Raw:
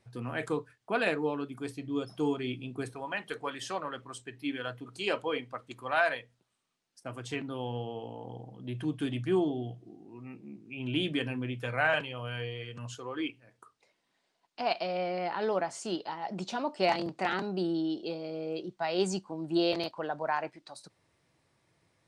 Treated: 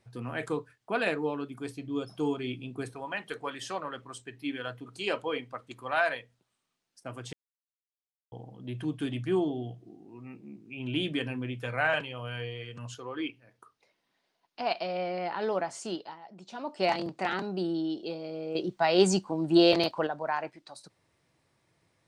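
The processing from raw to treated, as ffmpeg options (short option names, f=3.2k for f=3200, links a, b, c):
-filter_complex "[0:a]asettb=1/sr,asplit=3[a][b][c];[a]atrim=end=1.714[d];[b]atrim=start=1.71:end=2.44,asetpts=PTS-STARTPTS,afade=t=in:d=0.004:c=qsin,afade=t=out:st=0.726:d=0.004:c=qsin,bandreject=f=1.9k:w=13[e];[c]atrim=start=2.436[f];[d][e]acrossfade=d=0.004:c1=hsin:c2=qsin[g];[g][f]acrossfade=d=0.004:c1=qsin:c2=hsin,asettb=1/sr,asplit=3[h][i][j];[h]atrim=end=12.944[k];[i]atrim=start=12.94:end=15.36,asetpts=PTS-STARTPTS,afade=t=in:d=0.004:c=qsin,afade=t=out:st=2.416:d=0.004:c=qsin,equalizer=f=7.7k:t=o:w=0.3:g=-8.5[l];[j]atrim=start=15.356[m];[k][l]acrossfade=d=0.004:c1=hsin:c2=qsin[n];[n][m]acrossfade=d=0.004:c1=qsin:c2=hsin,asettb=1/sr,asplit=3[o][p][q];[o]atrim=end=18.554[r];[p]atrim=start=18.55:end=20.07,asetpts=PTS-STARTPTS,afade=t=in:d=0.004:c=qsin,afade=t=out:st=1.516:d=0.004:c=qsin,acontrast=85[s];[q]atrim=start=20.066[t];[r][s]acrossfade=d=0.004:c1=hsin:c2=qsin[u];[u][t]acrossfade=d=0.004:c1=qsin:c2=hsin,asplit=5[v][w][x][y][z];[v]atrim=end=7.33,asetpts=PTS-STARTPTS,afade=t=out:st=7.326:d=0.004:c=hsin[aa];[w]atrim=start=7.33:end=8.32,asetpts=PTS-STARTPTS,volume=0[ab];[x]atrim=start=8.32:end=16.25,asetpts=PTS-STARTPTS,afade=t=in:d=0.004:c=hsin,afade=t=out:st=7.54:d=0.39:silence=0.223872[ac];[y]atrim=start=16.25:end=16.44,asetpts=PTS-STARTPTS,volume=-13dB[ad];[z]atrim=start=16.44,asetpts=PTS-STARTPTS,afade=t=in:d=0.39:silence=0.223872[ae];[aa][ab][ac][ad][ae]concat=n=5:v=0:a=1"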